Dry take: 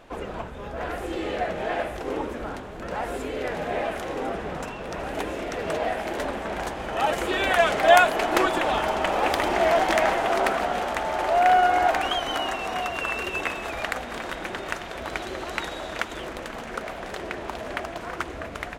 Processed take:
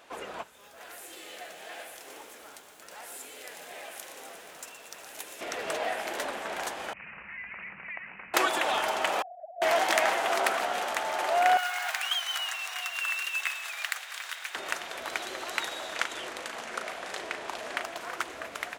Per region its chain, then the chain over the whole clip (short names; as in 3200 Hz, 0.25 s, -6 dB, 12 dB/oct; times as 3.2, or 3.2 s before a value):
0.43–5.41 pre-emphasis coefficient 0.8 + lo-fi delay 0.119 s, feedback 80%, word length 10-bit, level -10 dB
6.93–8.34 Chebyshev band-stop 200–3400 Hz, order 4 + compressor 3:1, threshold -35 dBFS + careless resampling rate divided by 8×, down none, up filtered
9.22–9.62 sine-wave speech + elliptic low-pass 570 Hz, stop band 50 dB
11.57–14.55 HPF 1500 Hz + modulation noise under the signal 25 dB
15.96–17.83 LPF 11000 Hz + doubler 38 ms -8 dB
whole clip: HPF 800 Hz 6 dB/oct; high shelf 4700 Hz +7 dB; gain -1.5 dB